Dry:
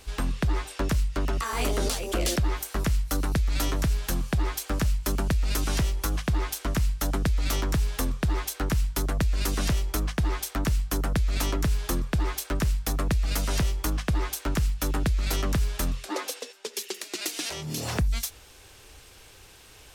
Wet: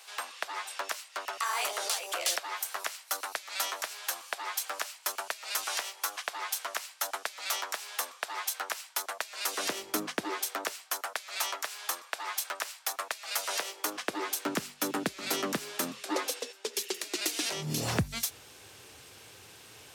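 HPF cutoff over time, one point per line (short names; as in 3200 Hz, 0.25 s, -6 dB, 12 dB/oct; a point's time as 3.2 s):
HPF 24 dB/oct
9.42 s 660 Hz
9.9 s 200 Hz
10.98 s 680 Hz
13.28 s 680 Hz
14.47 s 230 Hz
17.37 s 230 Hz
17.79 s 99 Hz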